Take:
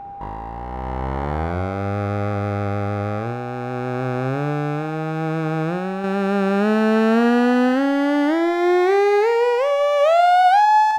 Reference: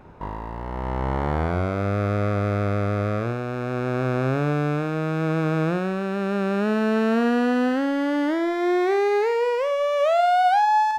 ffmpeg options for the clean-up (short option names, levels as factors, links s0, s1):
-af "bandreject=f=800:w=30,asetnsamples=n=441:p=0,asendcmd='6.04 volume volume -4.5dB',volume=1"